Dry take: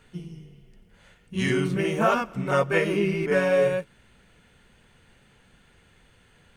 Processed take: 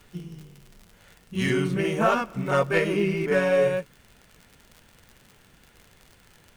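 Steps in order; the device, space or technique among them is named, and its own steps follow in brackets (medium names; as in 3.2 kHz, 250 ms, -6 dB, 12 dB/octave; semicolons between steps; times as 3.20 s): record under a worn stylus (tracing distortion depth 0.025 ms; crackle 77 per s -37 dBFS; pink noise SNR 35 dB)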